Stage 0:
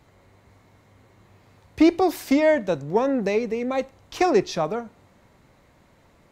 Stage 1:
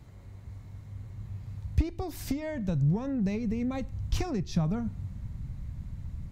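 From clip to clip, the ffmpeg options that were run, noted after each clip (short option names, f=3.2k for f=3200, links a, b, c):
-af "bass=f=250:g=14,treble=f=4k:g=4,acompressor=threshold=-25dB:ratio=10,asubboost=boost=8:cutoff=150,volume=-4.5dB"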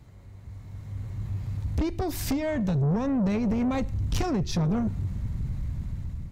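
-af "asoftclip=type=tanh:threshold=-30.5dB,dynaudnorm=f=330:g=5:m=9dB"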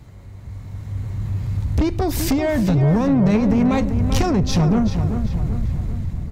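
-filter_complex "[0:a]asplit=2[a][b];[b]adelay=388,lowpass=f=3.8k:p=1,volume=-8dB,asplit=2[c][d];[d]adelay=388,lowpass=f=3.8k:p=1,volume=0.51,asplit=2[e][f];[f]adelay=388,lowpass=f=3.8k:p=1,volume=0.51,asplit=2[g][h];[h]adelay=388,lowpass=f=3.8k:p=1,volume=0.51,asplit=2[i][j];[j]adelay=388,lowpass=f=3.8k:p=1,volume=0.51,asplit=2[k][l];[l]adelay=388,lowpass=f=3.8k:p=1,volume=0.51[m];[a][c][e][g][i][k][m]amix=inputs=7:normalize=0,volume=8dB"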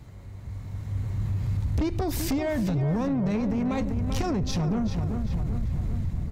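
-af "alimiter=limit=-17.5dB:level=0:latency=1:release=77,volume=-3dB"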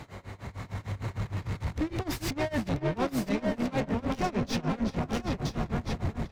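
-filter_complex "[0:a]asplit=2[a][b];[b]highpass=f=720:p=1,volume=25dB,asoftclip=type=tanh:threshold=-20dB[c];[a][c]amix=inputs=2:normalize=0,lowpass=f=2.8k:p=1,volume=-6dB,aecho=1:1:985:0.596,tremolo=f=6.6:d=0.93,volume=-1.5dB"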